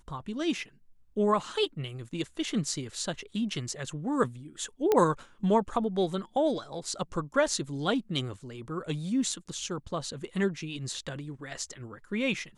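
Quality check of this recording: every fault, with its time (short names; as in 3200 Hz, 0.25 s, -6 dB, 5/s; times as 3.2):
4.92 pop -12 dBFS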